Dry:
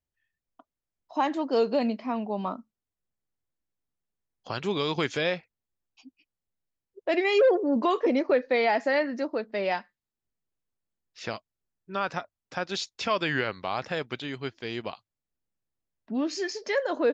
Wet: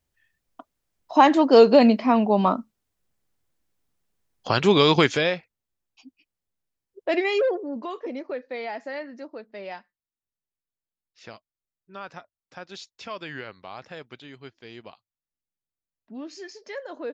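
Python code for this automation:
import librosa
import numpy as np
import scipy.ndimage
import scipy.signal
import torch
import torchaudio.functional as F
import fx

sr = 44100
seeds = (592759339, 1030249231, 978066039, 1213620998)

y = fx.gain(x, sr, db=fx.line((4.95, 11.0), (5.35, 2.0), (7.19, 2.0), (7.82, -9.0)))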